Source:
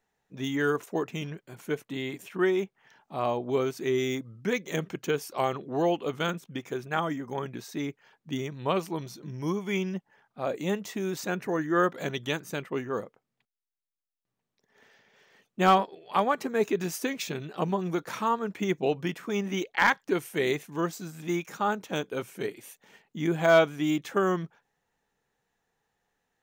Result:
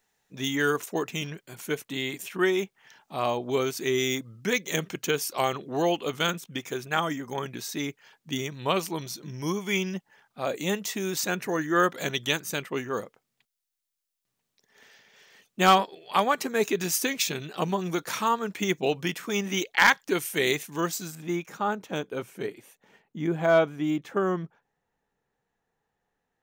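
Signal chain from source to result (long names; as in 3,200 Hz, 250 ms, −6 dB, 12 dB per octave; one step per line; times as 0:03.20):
high-shelf EQ 2,200 Hz +11 dB, from 0:21.15 −2.5 dB, from 0:22.61 −8 dB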